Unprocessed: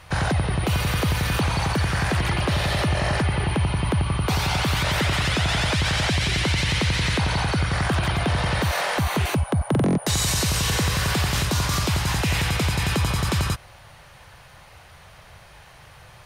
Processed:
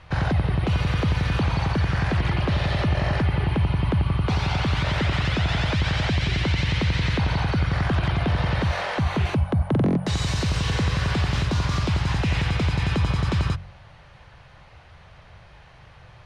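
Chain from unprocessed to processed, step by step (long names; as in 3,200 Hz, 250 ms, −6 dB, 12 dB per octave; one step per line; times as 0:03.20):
low-pass filter 4,400 Hz 12 dB per octave
low-shelf EQ 300 Hz +6 dB
hum removal 45.6 Hz, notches 4
level −3.5 dB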